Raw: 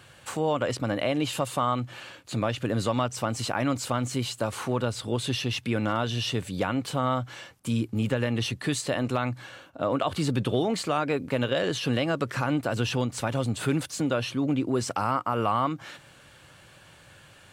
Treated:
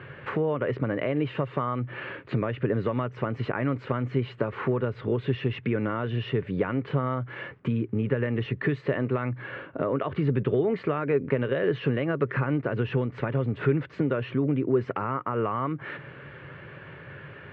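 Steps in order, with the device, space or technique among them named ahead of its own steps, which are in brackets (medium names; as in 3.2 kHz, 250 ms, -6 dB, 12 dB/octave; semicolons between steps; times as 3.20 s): bass amplifier (compression 3:1, threshold -37 dBFS, peak gain reduction 12.5 dB; cabinet simulation 71–2300 Hz, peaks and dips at 140 Hz +7 dB, 410 Hz +10 dB, 770 Hz -7 dB, 1.9 kHz +4 dB); trim +8.5 dB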